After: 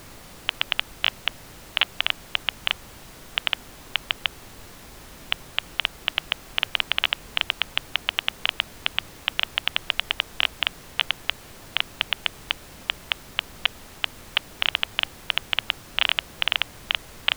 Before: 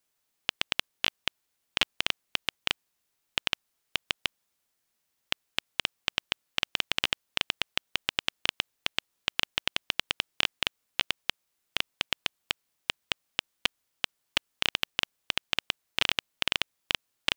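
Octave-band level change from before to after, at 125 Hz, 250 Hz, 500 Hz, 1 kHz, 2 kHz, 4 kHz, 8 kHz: +4.0 dB, +0.5 dB, +2.5 dB, +5.5 dB, +5.5 dB, +5.0 dB, -1.5 dB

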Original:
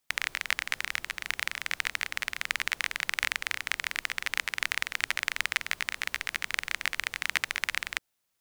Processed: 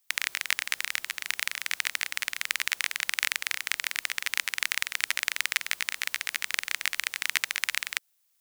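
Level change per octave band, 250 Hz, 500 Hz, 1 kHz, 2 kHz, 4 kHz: no reading, -5.0 dB, -2.0 dB, +0.5 dB, +3.0 dB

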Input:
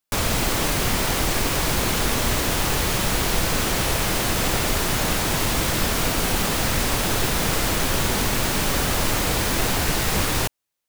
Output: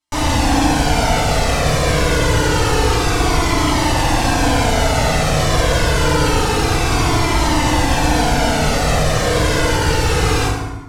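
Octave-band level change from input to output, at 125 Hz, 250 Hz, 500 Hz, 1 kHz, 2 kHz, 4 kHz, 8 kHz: +9.0 dB, +8.0 dB, +9.0 dB, +9.0 dB, +5.5 dB, +3.5 dB, +1.0 dB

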